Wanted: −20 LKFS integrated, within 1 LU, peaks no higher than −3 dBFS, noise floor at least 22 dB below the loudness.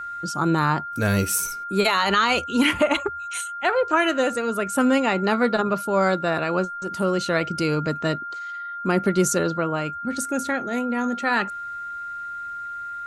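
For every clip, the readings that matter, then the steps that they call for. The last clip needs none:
interfering tone 1,400 Hz; level of the tone −30 dBFS; integrated loudness −23.0 LKFS; sample peak −8.0 dBFS; target loudness −20.0 LKFS
→ notch filter 1,400 Hz, Q 30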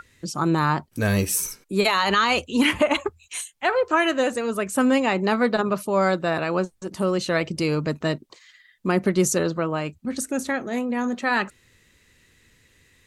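interfering tone none found; integrated loudness −23.0 LKFS; sample peak −8.5 dBFS; target loudness −20.0 LKFS
→ level +3 dB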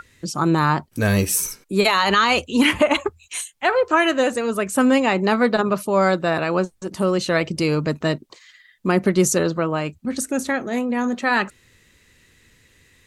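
integrated loudness −20.0 LKFS; sample peak −5.5 dBFS; background noise floor −57 dBFS

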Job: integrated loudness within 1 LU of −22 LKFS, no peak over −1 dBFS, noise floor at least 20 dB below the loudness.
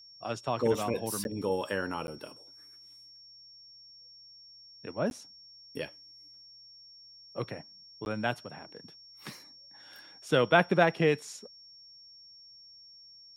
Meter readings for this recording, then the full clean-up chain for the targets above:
number of dropouts 4; longest dropout 11 ms; interfering tone 5,500 Hz; level of the tone −51 dBFS; integrated loudness −30.5 LKFS; sample peak −7.5 dBFS; target loudness −22.0 LKFS
→ repair the gap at 0:01.24/0:02.07/0:05.10/0:08.05, 11 ms
notch filter 5,500 Hz, Q 30
level +8.5 dB
brickwall limiter −1 dBFS

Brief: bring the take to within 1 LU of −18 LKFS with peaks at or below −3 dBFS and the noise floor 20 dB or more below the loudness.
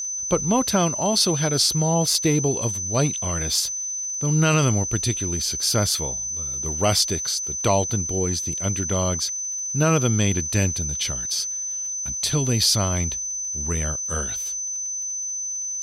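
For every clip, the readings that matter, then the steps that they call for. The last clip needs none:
crackle rate 44 per second; interfering tone 6,100 Hz; level of the tone −26 dBFS; integrated loudness −22.0 LKFS; sample peak −6.5 dBFS; target loudness −18.0 LKFS
→ click removal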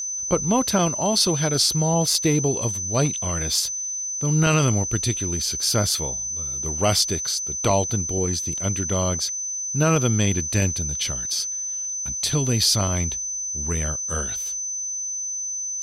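crackle rate 0.51 per second; interfering tone 6,100 Hz; level of the tone −26 dBFS
→ notch filter 6,100 Hz, Q 30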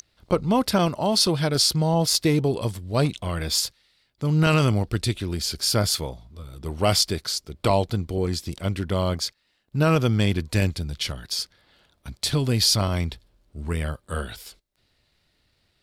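interfering tone none found; integrated loudness −23.5 LKFS; sample peak −7.0 dBFS; target loudness −18.0 LKFS
→ level +5.5 dB
brickwall limiter −3 dBFS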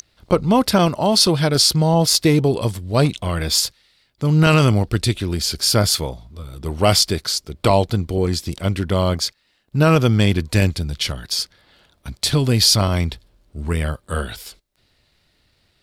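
integrated loudness −18.0 LKFS; sample peak −3.0 dBFS; background noise floor −64 dBFS

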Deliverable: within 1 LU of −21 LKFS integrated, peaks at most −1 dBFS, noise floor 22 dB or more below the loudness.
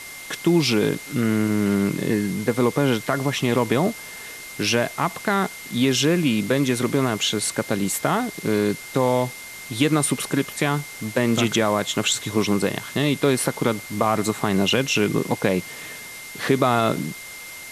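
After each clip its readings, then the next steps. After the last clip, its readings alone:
interfering tone 2,100 Hz; level of the tone −38 dBFS; background noise floor −38 dBFS; target noise floor −44 dBFS; integrated loudness −22.0 LKFS; sample peak −4.5 dBFS; target loudness −21.0 LKFS
→ notch filter 2,100 Hz, Q 30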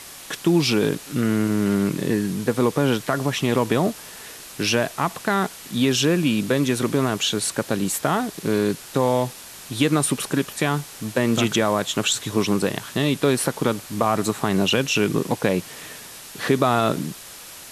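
interfering tone none found; background noise floor −40 dBFS; target noise floor −44 dBFS
→ broadband denoise 6 dB, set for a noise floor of −40 dBFS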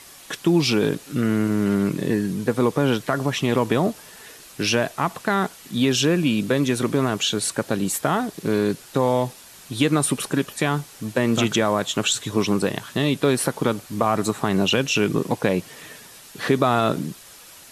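background noise floor −45 dBFS; integrated loudness −22.0 LKFS; sample peak −4.5 dBFS; target loudness −21.0 LKFS
→ level +1 dB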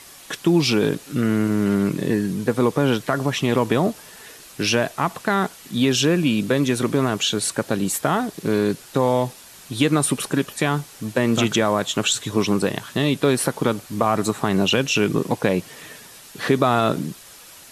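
integrated loudness −21.0 LKFS; sample peak −3.5 dBFS; background noise floor −44 dBFS

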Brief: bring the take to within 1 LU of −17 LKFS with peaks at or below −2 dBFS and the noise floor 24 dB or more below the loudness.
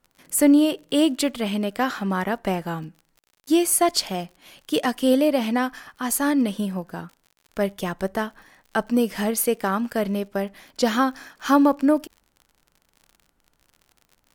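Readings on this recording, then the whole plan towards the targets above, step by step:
crackle rate 46 per second; integrated loudness −23.0 LKFS; sample peak −5.5 dBFS; target loudness −17.0 LKFS
→ click removal
level +6 dB
brickwall limiter −2 dBFS

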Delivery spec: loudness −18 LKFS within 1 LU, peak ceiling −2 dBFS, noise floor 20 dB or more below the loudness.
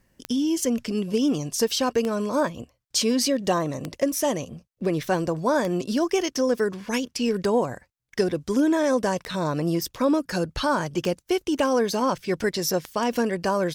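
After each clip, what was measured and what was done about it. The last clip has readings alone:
number of clicks 8; integrated loudness −24.5 LKFS; sample peak −10.0 dBFS; target loudness −18.0 LKFS
→ click removal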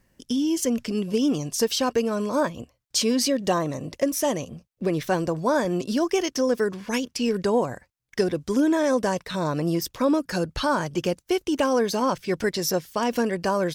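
number of clicks 0; integrated loudness −25.0 LKFS; sample peak −10.0 dBFS; target loudness −18.0 LKFS
→ level +7 dB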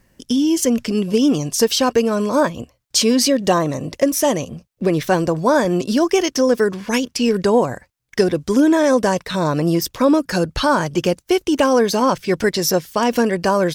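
integrated loudness −18.0 LKFS; sample peak −3.0 dBFS; background noise floor −65 dBFS

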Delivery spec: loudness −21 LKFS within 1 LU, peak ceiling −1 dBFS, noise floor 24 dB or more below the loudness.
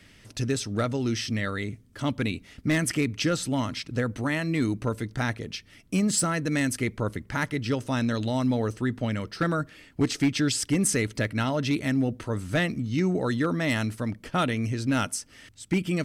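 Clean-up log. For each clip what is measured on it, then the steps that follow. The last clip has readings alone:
share of clipped samples 0.4%; peaks flattened at −16.5 dBFS; integrated loudness −27.5 LKFS; sample peak −16.5 dBFS; target loudness −21.0 LKFS
→ clipped peaks rebuilt −16.5 dBFS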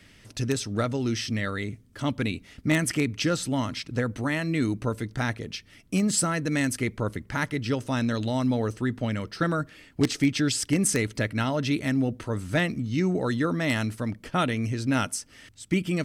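share of clipped samples 0.0%; integrated loudness −27.0 LKFS; sample peak −7.5 dBFS; target loudness −21.0 LKFS
→ level +6 dB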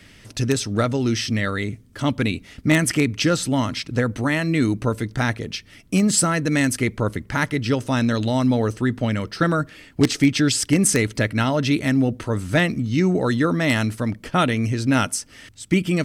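integrated loudness −21.0 LKFS; sample peak −1.5 dBFS; background noise floor −49 dBFS

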